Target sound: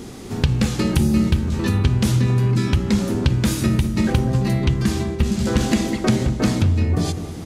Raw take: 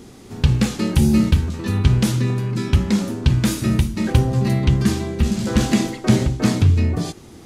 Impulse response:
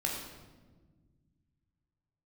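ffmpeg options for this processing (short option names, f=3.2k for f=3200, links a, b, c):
-filter_complex "[0:a]asplit=3[a][b][c];[a]afade=t=out:st=5.02:d=0.02[d];[b]agate=range=-33dB:threshold=-19dB:ratio=3:detection=peak,afade=t=in:st=5.02:d=0.02,afade=t=out:st=5.66:d=0.02[e];[c]afade=t=in:st=5.66:d=0.02[f];[d][e][f]amix=inputs=3:normalize=0,acompressor=threshold=-24dB:ratio=3,asplit=2[g][h];[h]adelay=201,lowpass=f=980:p=1,volume=-9dB,asplit=2[i][j];[j]adelay=201,lowpass=f=980:p=1,volume=0.51,asplit=2[k][l];[l]adelay=201,lowpass=f=980:p=1,volume=0.51,asplit=2[m][n];[n]adelay=201,lowpass=f=980:p=1,volume=0.51,asplit=2[o][p];[p]adelay=201,lowpass=f=980:p=1,volume=0.51,asplit=2[q][r];[r]adelay=201,lowpass=f=980:p=1,volume=0.51[s];[g][i][k][m][o][q][s]amix=inputs=7:normalize=0,volume=6.5dB"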